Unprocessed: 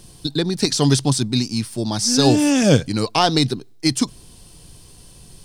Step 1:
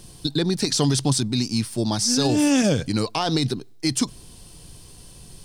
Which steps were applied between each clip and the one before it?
peak limiter -11.5 dBFS, peak gain reduction 10 dB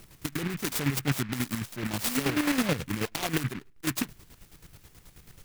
square tremolo 9.3 Hz, depth 60%, duty 40%; delay time shaken by noise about 1.7 kHz, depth 0.23 ms; trim -5 dB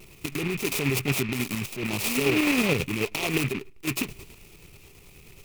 vibrato 1.8 Hz 54 cents; graphic EQ with 31 bands 400 Hz +10 dB, 1.6 kHz -9 dB, 2.5 kHz +12 dB; transient shaper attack -3 dB, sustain +6 dB; trim +1.5 dB

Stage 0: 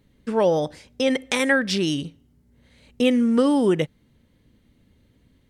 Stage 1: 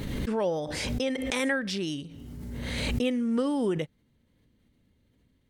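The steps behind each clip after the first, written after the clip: swell ahead of each attack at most 22 dB/s; trim -9 dB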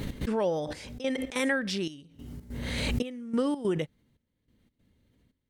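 trance gate "x.xxxxx...x" 144 bpm -12 dB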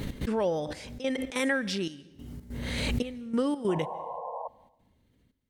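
painted sound noise, 3.68–4.48 s, 460–1100 Hz -37 dBFS; reverberation RT60 0.85 s, pre-delay 140 ms, DRR 22.5 dB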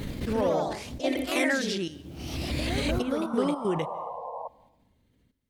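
ever faster or slower copies 104 ms, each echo +2 st, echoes 3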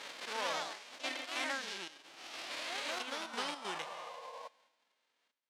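formants flattened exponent 0.3; band-pass 540–4400 Hz; trim -8.5 dB

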